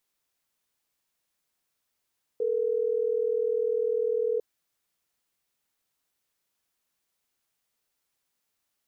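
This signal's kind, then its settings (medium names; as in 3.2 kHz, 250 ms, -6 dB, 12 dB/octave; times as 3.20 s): call progress tone ringback tone, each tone -26.5 dBFS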